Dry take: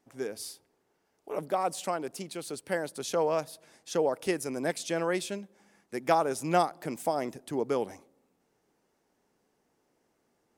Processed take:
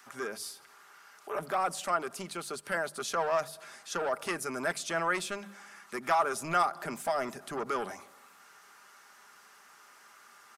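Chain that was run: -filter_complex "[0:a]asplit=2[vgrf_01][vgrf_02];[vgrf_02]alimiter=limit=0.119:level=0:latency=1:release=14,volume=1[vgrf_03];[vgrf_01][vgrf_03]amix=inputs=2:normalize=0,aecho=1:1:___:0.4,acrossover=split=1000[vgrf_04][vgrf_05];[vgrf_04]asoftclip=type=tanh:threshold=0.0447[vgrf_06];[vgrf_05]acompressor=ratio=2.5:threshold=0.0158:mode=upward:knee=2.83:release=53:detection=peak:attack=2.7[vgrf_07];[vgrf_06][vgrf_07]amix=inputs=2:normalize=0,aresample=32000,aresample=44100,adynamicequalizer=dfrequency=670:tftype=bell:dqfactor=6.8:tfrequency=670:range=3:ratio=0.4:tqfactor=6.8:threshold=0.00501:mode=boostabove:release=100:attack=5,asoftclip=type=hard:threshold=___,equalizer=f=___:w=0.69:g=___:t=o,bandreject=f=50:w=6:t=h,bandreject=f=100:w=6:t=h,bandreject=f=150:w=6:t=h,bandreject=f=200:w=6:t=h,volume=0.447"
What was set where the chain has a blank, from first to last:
5, 0.158, 1300, 11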